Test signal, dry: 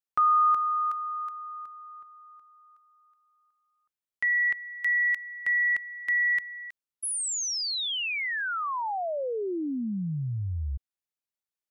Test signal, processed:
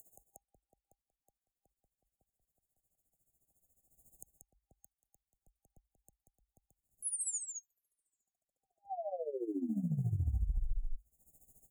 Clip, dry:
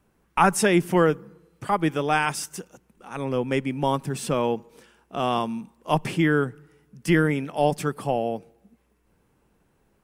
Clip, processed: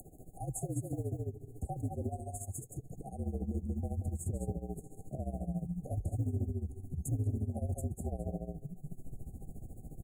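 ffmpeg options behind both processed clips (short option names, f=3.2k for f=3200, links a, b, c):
-filter_complex "[0:a]afreqshift=-53,acrossover=split=160|1500|5300[a][b][c][d];[a]acrusher=samples=30:mix=1:aa=0.000001:lfo=1:lforange=48:lforate=3.4[e];[b]alimiter=limit=-19.5dB:level=0:latency=1[f];[e][f][c][d]amix=inputs=4:normalize=0,acompressor=mode=upward:threshold=-27dB:ratio=2.5:attack=10:release=272:knee=2.83:detection=peak,asubboost=boost=4:cutoff=190,aecho=1:1:185:0.531,asoftclip=type=tanh:threshold=-10dB,tremolo=f=14:d=0.81,acompressor=threshold=-25dB:ratio=3:attack=0.17:release=355:knee=1:detection=peak,afftfilt=real='re*(1-between(b*sr/4096,800,6500))':imag='im*(1-between(b*sr/4096,800,6500))':win_size=4096:overlap=0.75,volume=-5dB"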